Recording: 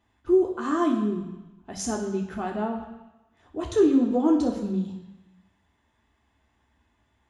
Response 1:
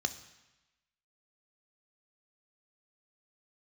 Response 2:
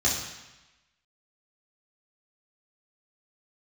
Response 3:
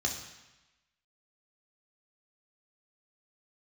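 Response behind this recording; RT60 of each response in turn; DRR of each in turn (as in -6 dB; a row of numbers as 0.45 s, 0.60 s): 3; 1.0 s, 1.0 s, 1.0 s; 9.0 dB, -6.5 dB, 0.0 dB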